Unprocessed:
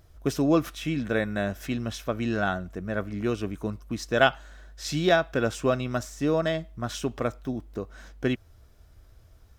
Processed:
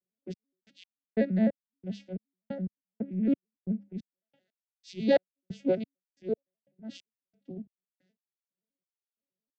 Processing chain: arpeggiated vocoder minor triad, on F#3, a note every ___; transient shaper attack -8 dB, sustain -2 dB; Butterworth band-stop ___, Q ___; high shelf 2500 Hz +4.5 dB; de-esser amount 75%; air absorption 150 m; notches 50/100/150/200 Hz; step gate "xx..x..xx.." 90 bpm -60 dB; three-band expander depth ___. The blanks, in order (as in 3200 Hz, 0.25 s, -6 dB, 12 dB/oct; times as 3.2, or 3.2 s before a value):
86 ms, 1100 Hz, 0.87, 70%